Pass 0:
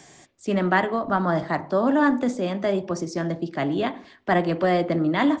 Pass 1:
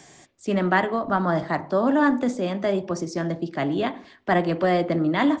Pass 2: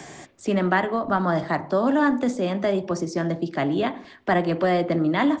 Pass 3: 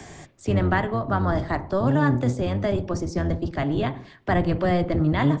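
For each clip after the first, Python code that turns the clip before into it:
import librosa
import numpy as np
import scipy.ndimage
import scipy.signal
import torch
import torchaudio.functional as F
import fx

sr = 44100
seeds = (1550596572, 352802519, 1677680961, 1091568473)

y1 = x
y2 = fx.band_squash(y1, sr, depth_pct=40)
y3 = fx.octave_divider(y2, sr, octaves=1, level_db=3.0)
y3 = y3 * librosa.db_to_amplitude(-2.5)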